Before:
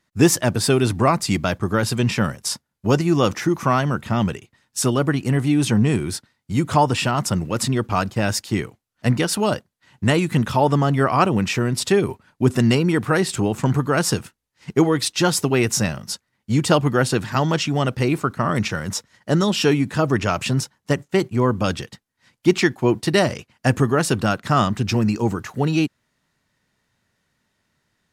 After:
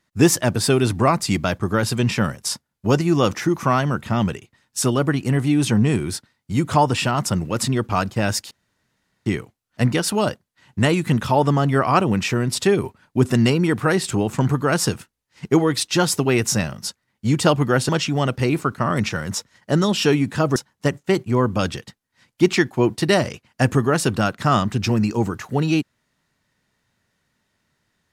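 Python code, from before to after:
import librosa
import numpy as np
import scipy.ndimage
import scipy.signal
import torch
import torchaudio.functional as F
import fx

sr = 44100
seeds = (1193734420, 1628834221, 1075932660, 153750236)

y = fx.edit(x, sr, fx.insert_room_tone(at_s=8.51, length_s=0.75),
    fx.cut(start_s=17.14, length_s=0.34),
    fx.cut(start_s=20.15, length_s=0.46), tone=tone)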